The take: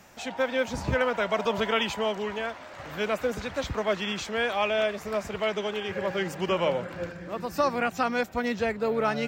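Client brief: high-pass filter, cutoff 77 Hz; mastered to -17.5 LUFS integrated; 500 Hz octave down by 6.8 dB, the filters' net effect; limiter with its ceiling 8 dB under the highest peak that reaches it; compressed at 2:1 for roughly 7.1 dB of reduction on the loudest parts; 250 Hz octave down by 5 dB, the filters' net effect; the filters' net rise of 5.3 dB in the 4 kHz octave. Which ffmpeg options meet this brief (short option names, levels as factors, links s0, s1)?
-af "highpass=77,equalizer=f=250:t=o:g=-4.5,equalizer=f=500:t=o:g=-7.5,equalizer=f=4000:t=o:g=7.5,acompressor=threshold=0.02:ratio=2,volume=8.91,alimiter=limit=0.422:level=0:latency=1"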